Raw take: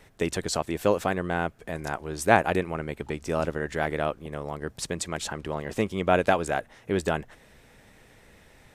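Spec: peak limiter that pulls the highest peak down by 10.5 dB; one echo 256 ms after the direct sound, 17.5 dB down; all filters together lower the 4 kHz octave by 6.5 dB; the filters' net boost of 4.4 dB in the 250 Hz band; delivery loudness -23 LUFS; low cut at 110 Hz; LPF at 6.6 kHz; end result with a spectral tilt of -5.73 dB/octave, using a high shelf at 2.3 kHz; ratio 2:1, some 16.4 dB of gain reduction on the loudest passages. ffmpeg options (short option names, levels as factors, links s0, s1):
-af "highpass=110,lowpass=6600,equalizer=f=250:t=o:g=6.5,highshelf=f=2300:g=-4.5,equalizer=f=4000:t=o:g=-3.5,acompressor=threshold=0.00562:ratio=2,alimiter=level_in=1.88:limit=0.0631:level=0:latency=1,volume=0.531,aecho=1:1:256:0.133,volume=10.6"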